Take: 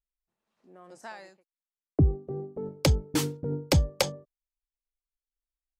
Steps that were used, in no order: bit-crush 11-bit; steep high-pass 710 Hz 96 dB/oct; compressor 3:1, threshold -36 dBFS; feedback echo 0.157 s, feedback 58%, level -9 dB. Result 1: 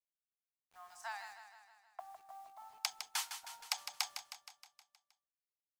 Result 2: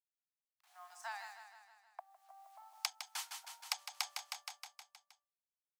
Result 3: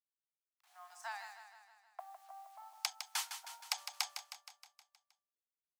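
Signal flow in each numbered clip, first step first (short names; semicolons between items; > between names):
steep high-pass > compressor > bit-crush > feedback echo; bit-crush > feedback echo > compressor > steep high-pass; bit-crush > steep high-pass > compressor > feedback echo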